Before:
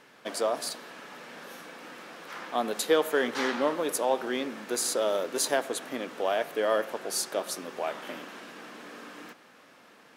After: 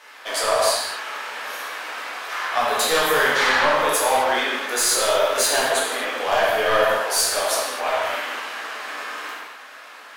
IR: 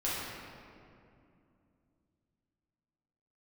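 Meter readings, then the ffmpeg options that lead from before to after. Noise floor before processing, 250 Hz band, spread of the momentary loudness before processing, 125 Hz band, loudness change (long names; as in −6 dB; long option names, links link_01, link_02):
−56 dBFS, −1.0 dB, 17 LU, +8.5 dB, +8.5 dB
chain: -filter_complex "[0:a]highpass=850,aeval=exprs='0.168*(cos(1*acos(clip(val(0)/0.168,-1,1)))-cos(1*PI/2))+0.00188*(cos(4*acos(clip(val(0)/0.168,-1,1)))-cos(4*PI/2))+0.0596*(cos(5*acos(clip(val(0)/0.168,-1,1)))-cos(5*PI/2))':channel_layout=same[link_01];[1:a]atrim=start_sample=2205,afade=type=out:start_time=0.27:duration=0.01,atrim=end_sample=12348,asetrate=36162,aresample=44100[link_02];[link_01][link_02]afir=irnorm=-1:irlink=0"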